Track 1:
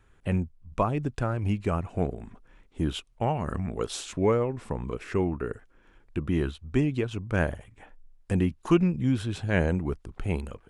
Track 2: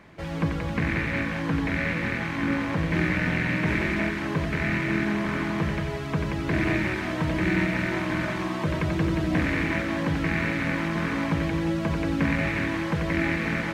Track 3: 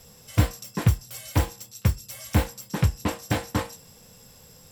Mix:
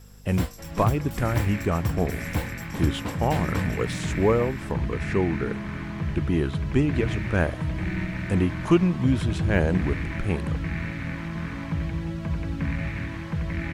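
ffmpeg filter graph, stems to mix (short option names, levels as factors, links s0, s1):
-filter_complex "[0:a]deesser=0.85,volume=1.33[s0];[1:a]asubboost=boost=4:cutoff=160,adelay=400,volume=0.398[s1];[2:a]aeval=exprs='val(0)+0.00891*(sin(2*PI*50*n/s)+sin(2*PI*2*50*n/s)/2+sin(2*PI*3*50*n/s)/3+sin(2*PI*4*50*n/s)/4+sin(2*PI*5*50*n/s)/5)':c=same,volume=0.501[s2];[s0][s1][s2]amix=inputs=3:normalize=0"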